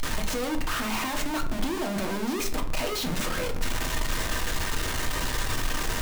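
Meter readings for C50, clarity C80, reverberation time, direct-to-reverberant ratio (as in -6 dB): 11.0 dB, 15.0 dB, 0.50 s, 3.0 dB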